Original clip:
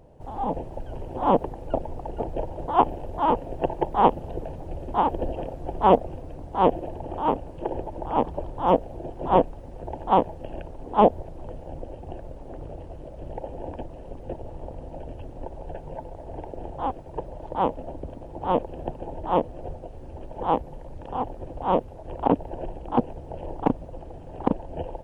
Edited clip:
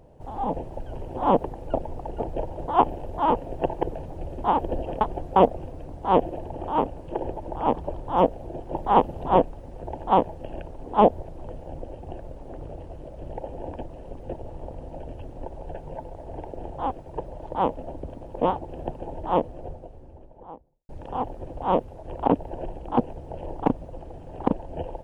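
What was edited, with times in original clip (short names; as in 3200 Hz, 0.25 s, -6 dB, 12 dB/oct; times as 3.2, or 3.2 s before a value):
3.83–4.33 move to 9.25
5.51–5.86 reverse
18.31–18.69 reverse
19.25–20.89 studio fade out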